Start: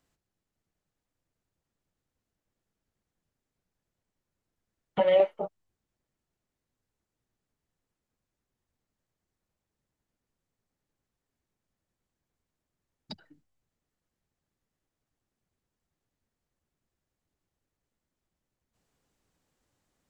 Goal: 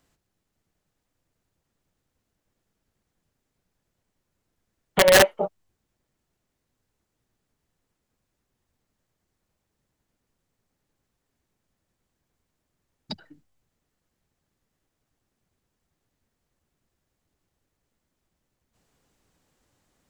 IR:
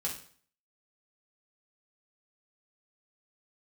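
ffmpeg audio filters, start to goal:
-af "acontrast=44,aeval=exprs='(mod(3.35*val(0)+1,2)-1)/3.35':c=same,volume=1.5dB"

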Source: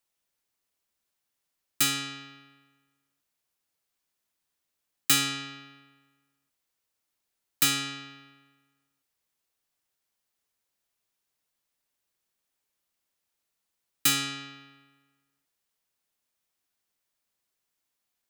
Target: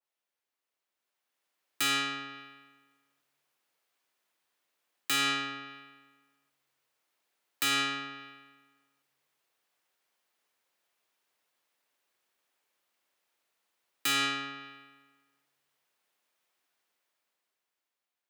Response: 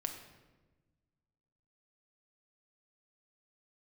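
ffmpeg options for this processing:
-filter_complex "[0:a]highpass=75,bass=f=250:g=-13,treble=f=4k:g=-8,dynaudnorm=f=210:g=13:m=10.5dB,alimiter=limit=-16dB:level=0:latency=1,asplit=2[a][b];[1:a]atrim=start_sample=2205[c];[b][c]afir=irnorm=-1:irlink=0,volume=-15dB[d];[a][d]amix=inputs=2:normalize=0,adynamicequalizer=threshold=0.0126:dfrequency=2000:dqfactor=0.7:tfrequency=2000:tqfactor=0.7:attack=5:release=100:ratio=0.375:range=3.5:mode=cutabove:tftype=highshelf,volume=-4dB"

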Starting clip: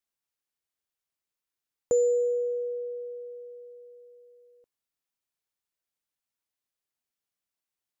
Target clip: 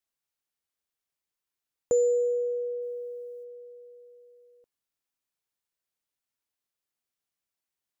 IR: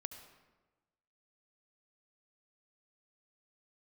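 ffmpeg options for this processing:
-filter_complex "[0:a]asplit=3[a][b][c];[a]afade=t=out:st=2.81:d=0.02[d];[b]highshelf=f=3.7k:g=11.5,afade=t=in:st=2.81:d=0.02,afade=t=out:st=3.43:d=0.02[e];[c]afade=t=in:st=3.43:d=0.02[f];[d][e][f]amix=inputs=3:normalize=0"

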